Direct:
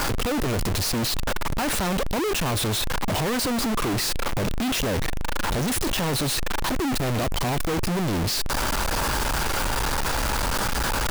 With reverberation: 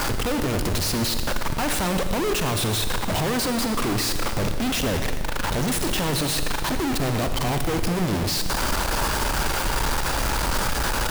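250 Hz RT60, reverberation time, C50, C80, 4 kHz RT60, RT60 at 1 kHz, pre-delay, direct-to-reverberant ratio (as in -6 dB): 2.1 s, 1.8 s, 7.5 dB, 8.5 dB, 1.7 s, 1.7 s, 40 ms, 7.0 dB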